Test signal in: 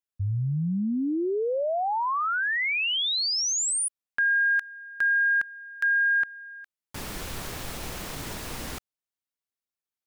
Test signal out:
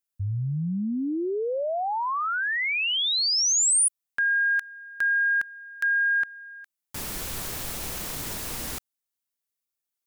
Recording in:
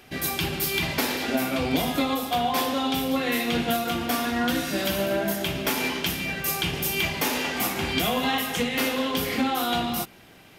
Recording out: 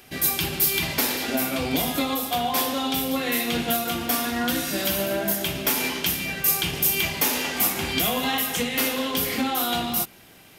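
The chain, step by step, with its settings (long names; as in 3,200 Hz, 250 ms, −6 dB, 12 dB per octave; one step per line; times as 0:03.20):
high-shelf EQ 6,000 Hz +10 dB
level −1 dB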